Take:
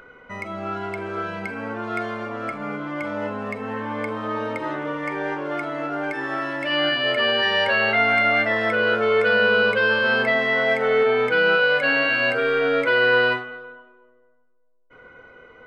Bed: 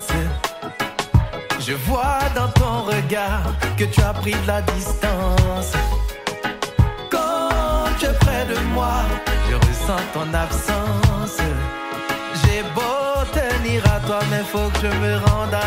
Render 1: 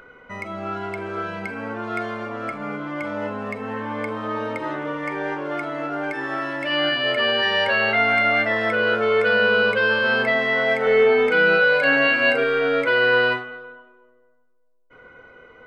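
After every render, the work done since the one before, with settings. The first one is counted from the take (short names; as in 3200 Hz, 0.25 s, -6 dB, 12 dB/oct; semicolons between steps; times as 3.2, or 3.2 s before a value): 10.83–12.44 doubler 36 ms -4 dB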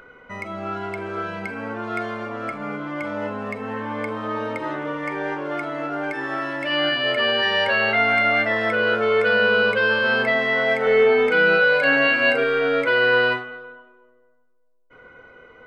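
nothing audible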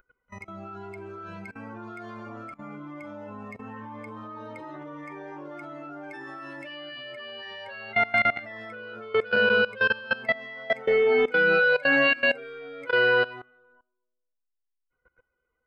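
per-bin expansion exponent 1.5; level quantiser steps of 20 dB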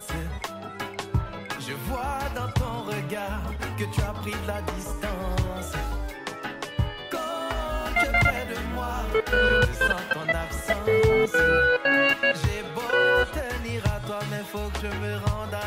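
add bed -10.5 dB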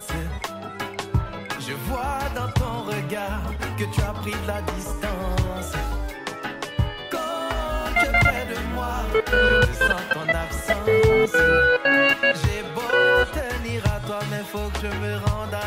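gain +3 dB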